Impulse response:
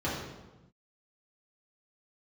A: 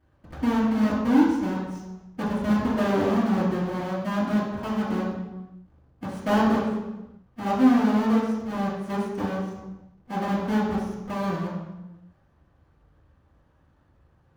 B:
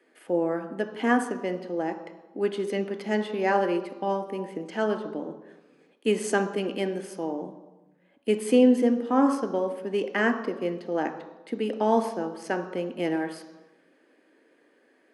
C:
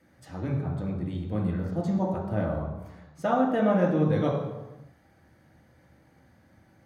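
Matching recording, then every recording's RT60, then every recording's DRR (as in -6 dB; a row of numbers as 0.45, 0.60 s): A; 1.0, 1.0, 1.0 s; -8.5, 7.0, -1.5 dB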